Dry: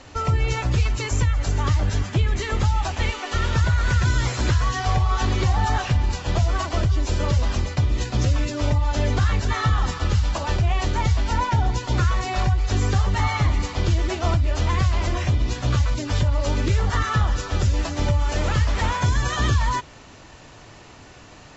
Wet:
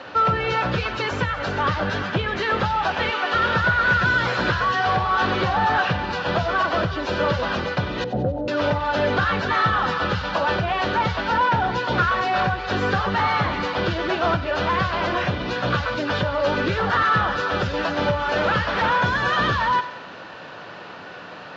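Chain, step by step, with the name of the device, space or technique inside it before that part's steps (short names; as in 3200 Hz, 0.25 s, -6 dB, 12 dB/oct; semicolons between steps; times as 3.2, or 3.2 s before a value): 8.04–8.48 Chebyshev low-pass 870 Hz, order 8; thinning echo 93 ms, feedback 55%, high-pass 910 Hz, level -15.5 dB; overdrive pedal into a guitar cabinet (overdrive pedal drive 19 dB, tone 2800 Hz, clips at -8.5 dBFS; speaker cabinet 97–4500 Hz, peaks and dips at 180 Hz +9 dB, 520 Hz +6 dB, 1500 Hz +7 dB, 2100 Hz -5 dB); gain -3 dB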